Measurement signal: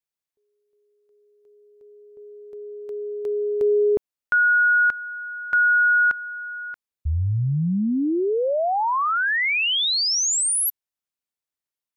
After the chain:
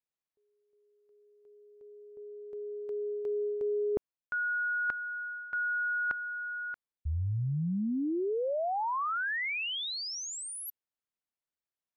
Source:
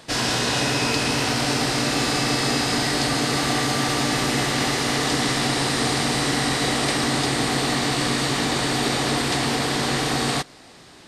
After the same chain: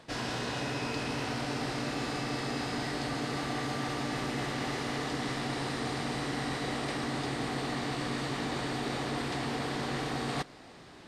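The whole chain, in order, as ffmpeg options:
-af "areverse,acompressor=threshold=-27dB:ratio=6:attack=35:release=324:knee=6:detection=rms,areverse,highshelf=f=4k:g=-11,volume=-3dB"

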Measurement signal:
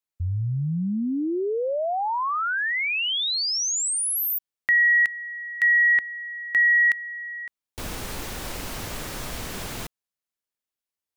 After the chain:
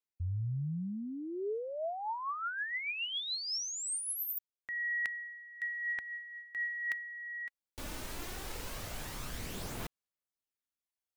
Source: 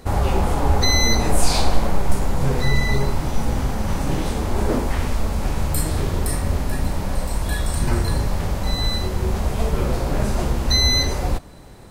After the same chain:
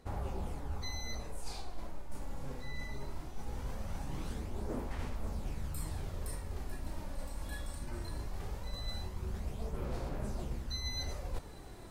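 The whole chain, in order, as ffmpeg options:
-af "areverse,acompressor=threshold=-28dB:ratio=16:attack=15:release=526:knee=6:detection=rms,areverse,aphaser=in_gain=1:out_gain=1:delay=3.6:decay=0.35:speed=0.2:type=sinusoidal,volume=-7.5dB"

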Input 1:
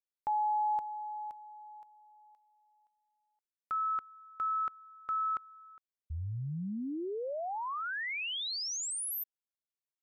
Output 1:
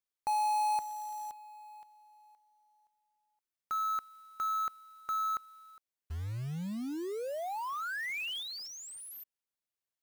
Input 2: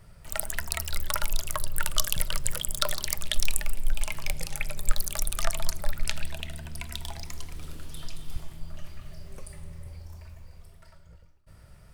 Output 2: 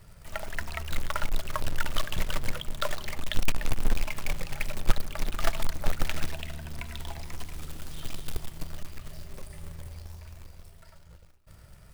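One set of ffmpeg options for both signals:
-filter_complex "[0:a]acrossover=split=3300[a][b];[b]acompressor=threshold=-48dB:ratio=4:attack=1:release=60[c];[a][c]amix=inputs=2:normalize=0,acrusher=bits=3:mode=log:mix=0:aa=0.000001"

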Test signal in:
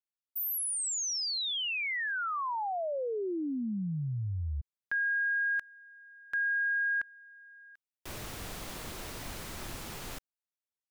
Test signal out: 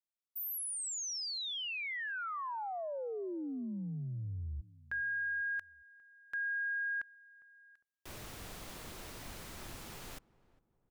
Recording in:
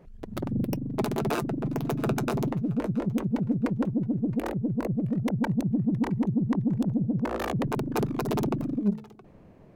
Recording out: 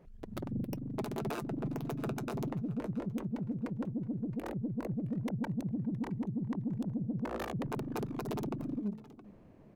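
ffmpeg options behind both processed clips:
-filter_complex "[0:a]alimiter=limit=-21.5dB:level=0:latency=1:release=245,asplit=2[a][b];[b]adelay=405,lowpass=f=950:p=1,volume=-20dB,asplit=2[c][d];[d]adelay=405,lowpass=f=950:p=1,volume=0.44,asplit=2[e][f];[f]adelay=405,lowpass=f=950:p=1,volume=0.44[g];[c][e][g]amix=inputs=3:normalize=0[h];[a][h]amix=inputs=2:normalize=0,volume=-6dB"

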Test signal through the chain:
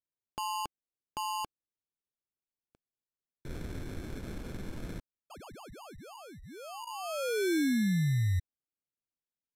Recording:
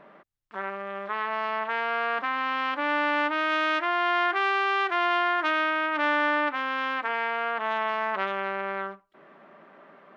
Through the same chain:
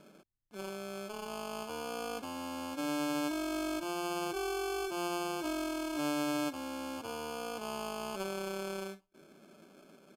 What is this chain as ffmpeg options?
-af "firequalizer=gain_entry='entry(330,0);entry(770,-12);entry(1800,-21)':delay=0.05:min_phase=1,acrusher=samples=23:mix=1:aa=0.000001,aresample=32000,aresample=44100"

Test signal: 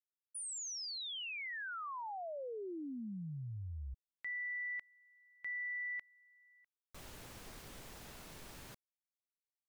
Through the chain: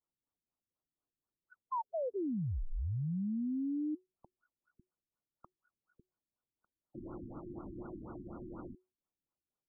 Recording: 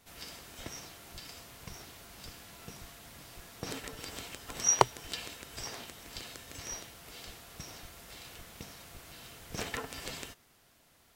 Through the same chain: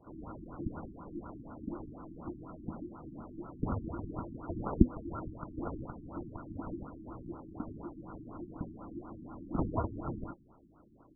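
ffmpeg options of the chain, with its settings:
-af "afreqshift=-370,highshelf=f=3k:t=q:w=1.5:g=-12.5,afftfilt=real='re*lt(b*sr/1024,360*pow(1500/360,0.5+0.5*sin(2*PI*4.1*pts/sr)))':imag='im*lt(b*sr/1024,360*pow(1500/360,0.5+0.5*sin(2*PI*4.1*pts/sr)))':win_size=1024:overlap=0.75,volume=8dB"

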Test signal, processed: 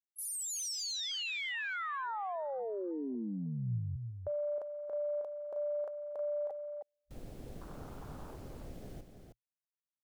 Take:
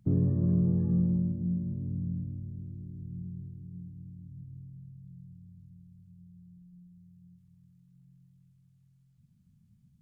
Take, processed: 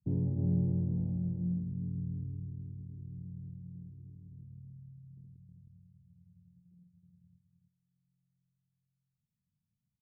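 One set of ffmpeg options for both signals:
-filter_complex "[0:a]afwtdn=0.0126,adynamicequalizer=threshold=0.00316:dfrequency=120:dqfactor=7.4:tfrequency=120:tqfactor=7.4:attack=5:release=100:ratio=0.375:range=3:mode=boostabove:tftype=bell,asplit=2[a][b];[b]aecho=0:1:315:0.447[c];[a][c]amix=inputs=2:normalize=0,volume=-6.5dB"

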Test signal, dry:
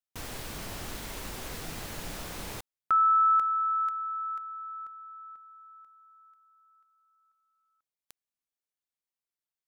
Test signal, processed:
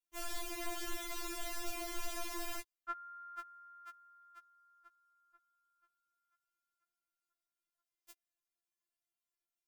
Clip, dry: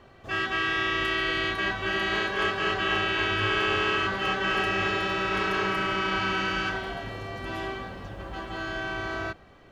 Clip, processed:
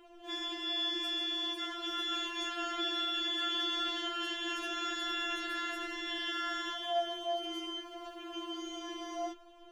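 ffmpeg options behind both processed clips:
-af "bandreject=f=4k:w=14,afftfilt=real='re*4*eq(mod(b,16),0)':imag='im*4*eq(mod(b,16),0)':win_size=2048:overlap=0.75"

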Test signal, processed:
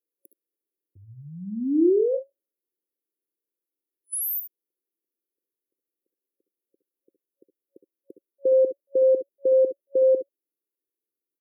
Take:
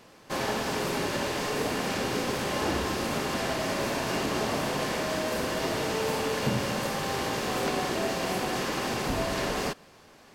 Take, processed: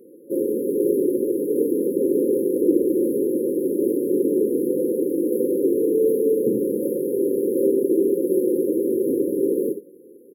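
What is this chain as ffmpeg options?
-filter_complex "[0:a]afftfilt=real='re*(1-between(b*sr/4096,550,10000))':imag='im*(1-between(b*sr/4096,550,10000))':win_size=4096:overlap=0.75,acontrast=39,highpass=f=340:t=q:w=3.4,asplit=2[a][b];[b]aecho=0:1:63|73:0.266|0.251[c];[a][c]amix=inputs=2:normalize=0"

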